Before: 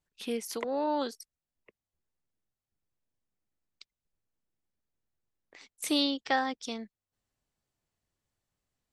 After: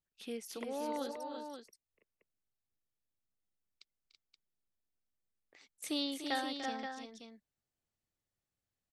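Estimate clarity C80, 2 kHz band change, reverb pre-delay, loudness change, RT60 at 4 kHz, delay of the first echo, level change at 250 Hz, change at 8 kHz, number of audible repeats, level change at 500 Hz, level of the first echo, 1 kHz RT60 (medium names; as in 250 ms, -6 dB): no reverb, -7.0 dB, no reverb, -8.0 dB, no reverb, 294 ms, -7.0 dB, -7.0 dB, 3, -7.0 dB, -11.0 dB, no reverb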